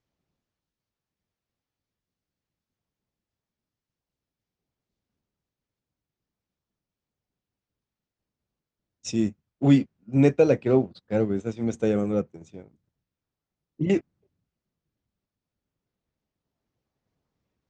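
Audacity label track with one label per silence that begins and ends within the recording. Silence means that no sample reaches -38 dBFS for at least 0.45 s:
12.640000	13.800000	silence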